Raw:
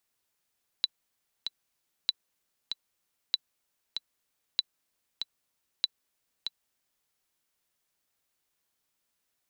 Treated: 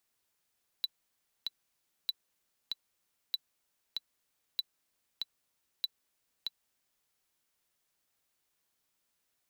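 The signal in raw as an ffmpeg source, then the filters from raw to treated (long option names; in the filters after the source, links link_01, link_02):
-f lavfi -i "aevalsrc='pow(10,(-11.5-7.5*gte(mod(t,2*60/96),60/96))/20)*sin(2*PI*3970*mod(t,60/96))*exp(-6.91*mod(t,60/96)/0.03)':duration=6.25:sample_rate=44100"
-af "asoftclip=type=tanh:threshold=-24dB"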